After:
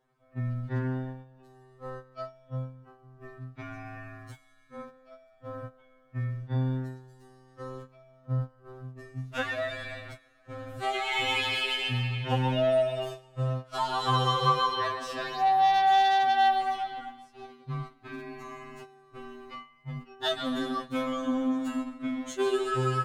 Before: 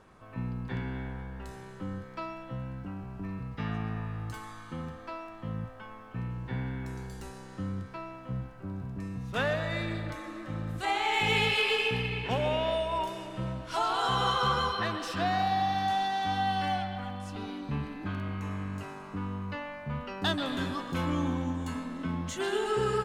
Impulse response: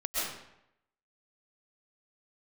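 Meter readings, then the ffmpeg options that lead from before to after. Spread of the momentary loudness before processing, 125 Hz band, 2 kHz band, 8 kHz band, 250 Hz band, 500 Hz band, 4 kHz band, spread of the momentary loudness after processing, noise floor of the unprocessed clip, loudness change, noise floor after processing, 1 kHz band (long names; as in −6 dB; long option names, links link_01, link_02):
13 LU, +1.5 dB, −1.0 dB, −1.0 dB, 0.0 dB, +1.5 dB, +1.0 dB, 22 LU, −47 dBFS, +4.0 dB, −61 dBFS, +4.0 dB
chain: -af "agate=range=-16dB:threshold=-36dB:ratio=16:detection=peak,afftfilt=real='re*2.45*eq(mod(b,6),0)':imag='im*2.45*eq(mod(b,6),0)':win_size=2048:overlap=0.75,volume=2dB"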